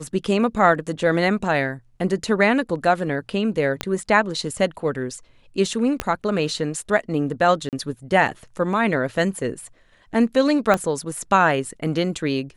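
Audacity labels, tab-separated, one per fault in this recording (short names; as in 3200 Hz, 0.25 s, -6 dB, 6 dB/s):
3.810000	3.810000	pop -8 dBFS
6.000000	6.000000	pop -8 dBFS
7.690000	7.730000	gap 38 ms
10.740000	10.740000	pop -7 dBFS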